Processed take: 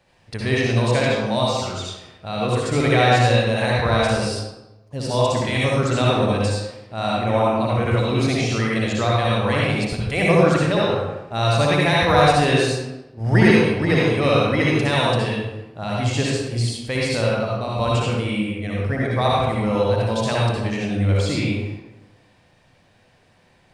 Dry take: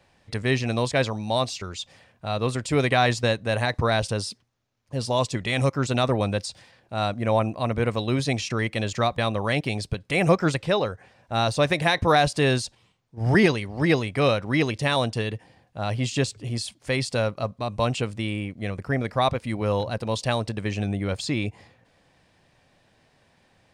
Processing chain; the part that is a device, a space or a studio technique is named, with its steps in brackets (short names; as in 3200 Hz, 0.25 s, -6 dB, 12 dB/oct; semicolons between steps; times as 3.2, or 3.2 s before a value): bathroom (reverb RT60 1.0 s, pre-delay 57 ms, DRR -5 dB); gain -1.5 dB